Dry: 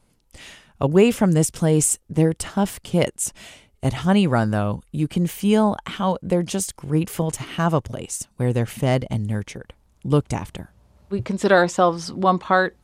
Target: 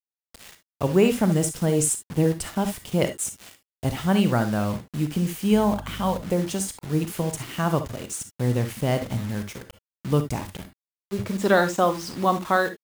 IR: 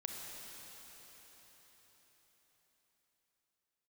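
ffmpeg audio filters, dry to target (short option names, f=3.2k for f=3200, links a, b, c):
-filter_complex "[0:a]acrusher=bits=5:mix=0:aa=0.000001,asettb=1/sr,asplit=3[a][b][c];[a]atrim=end=5.524[d];[b]atrim=start=5.52:end=6.22,asetpts=PTS-STARTPTS,afade=t=in:d=0.004:c=qsin,afade=t=out:st=0.696:d=0.004:c=qsin,aeval=exprs='val(0)+0.02*(sin(2*PI*50*n/s)+sin(2*PI*2*50*n/s)/2+sin(2*PI*3*50*n/s)/3+sin(2*PI*4*50*n/s)/4+sin(2*PI*5*50*n/s)/5)':c=same[e];[c]atrim=start=6.216[f];[d][e]acrossfade=d=0.004:c1=hsin:c2=qsin[g];[g][f]acrossfade=d=0.004:c1=qsin:c2=hsin[h];[1:a]atrim=start_sample=2205,atrim=end_sample=3528[i];[h][i]afir=irnorm=-1:irlink=0"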